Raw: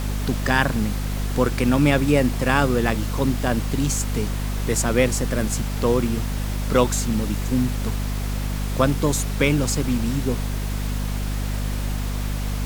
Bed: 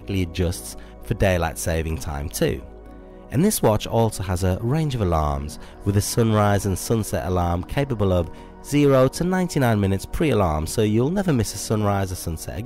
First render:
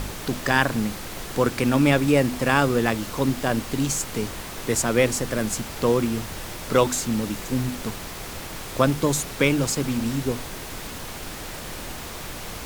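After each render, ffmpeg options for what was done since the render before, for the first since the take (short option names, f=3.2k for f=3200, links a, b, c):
-af "bandreject=f=50:t=h:w=6,bandreject=f=100:t=h:w=6,bandreject=f=150:t=h:w=6,bandreject=f=200:t=h:w=6,bandreject=f=250:t=h:w=6"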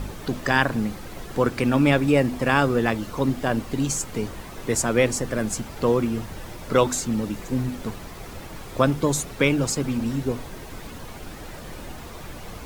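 -af "afftdn=nr=9:nf=-36"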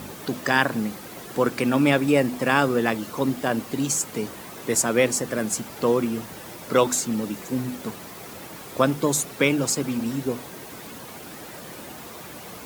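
-af "highpass=160,highshelf=f=9.7k:g=9"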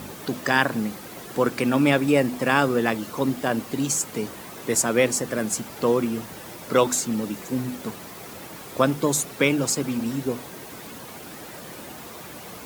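-af anull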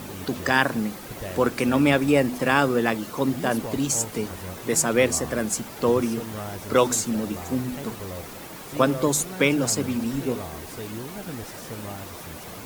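-filter_complex "[1:a]volume=-16.5dB[a];[0:a][a]amix=inputs=2:normalize=0"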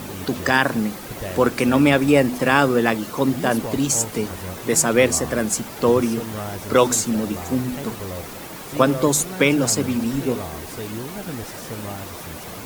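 -af "volume=4dB,alimiter=limit=-3dB:level=0:latency=1"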